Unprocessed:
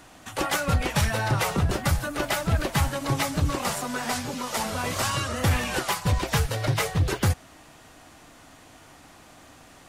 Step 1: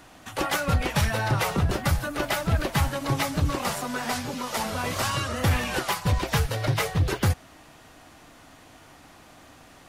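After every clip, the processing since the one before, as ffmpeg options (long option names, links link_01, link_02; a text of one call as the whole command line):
ffmpeg -i in.wav -af "equalizer=frequency=7900:width=1.5:gain=-3.5" out.wav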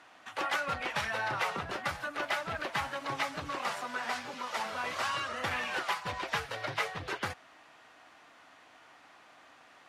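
ffmpeg -i in.wav -af "bandpass=frequency=1600:width_type=q:width=0.64:csg=0,volume=-3dB" out.wav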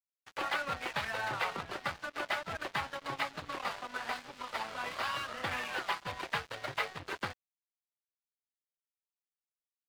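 ffmpeg -i in.wav -af "aresample=11025,aresample=44100,aeval=exprs='sgn(val(0))*max(abs(val(0))-0.00708,0)':channel_layout=same" out.wav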